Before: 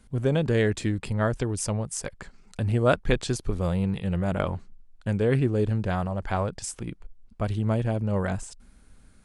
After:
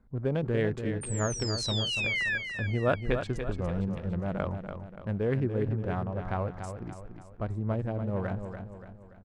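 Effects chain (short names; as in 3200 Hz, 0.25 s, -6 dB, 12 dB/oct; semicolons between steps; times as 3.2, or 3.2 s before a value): Wiener smoothing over 15 samples; 1.3–1.77 bell 5100 Hz +14.5 dB 0.92 oct; 1.01–2.38 painted sound fall 1600–9100 Hz -24 dBFS; tone controls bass -1 dB, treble -12 dB; on a send: feedback echo 0.288 s, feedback 46%, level -8 dB; on the sum: gain -5 dB; Opus 128 kbps 48000 Hz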